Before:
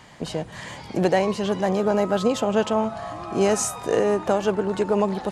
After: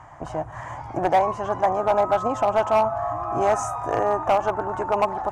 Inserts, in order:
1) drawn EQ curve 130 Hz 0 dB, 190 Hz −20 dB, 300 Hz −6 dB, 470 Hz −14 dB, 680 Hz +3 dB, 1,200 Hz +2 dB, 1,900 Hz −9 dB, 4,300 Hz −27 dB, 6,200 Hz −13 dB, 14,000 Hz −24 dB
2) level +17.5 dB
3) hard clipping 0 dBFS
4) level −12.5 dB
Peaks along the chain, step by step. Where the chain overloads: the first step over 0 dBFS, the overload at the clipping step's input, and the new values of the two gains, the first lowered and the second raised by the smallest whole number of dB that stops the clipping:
−10.0, +7.5, 0.0, −12.5 dBFS
step 2, 7.5 dB
step 2 +9.5 dB, step 4 −4.5 dB

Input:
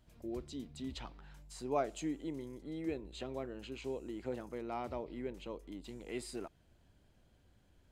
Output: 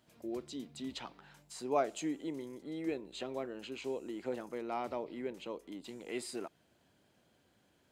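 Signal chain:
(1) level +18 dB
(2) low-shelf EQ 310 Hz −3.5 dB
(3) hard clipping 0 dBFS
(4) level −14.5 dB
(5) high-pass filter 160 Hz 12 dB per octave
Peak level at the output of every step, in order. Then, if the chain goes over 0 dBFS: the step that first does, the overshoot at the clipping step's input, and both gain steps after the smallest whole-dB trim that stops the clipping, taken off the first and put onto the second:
−3.5, −3.5, −3.5, −18.0, −17.5 dBFS
no step passes full scale

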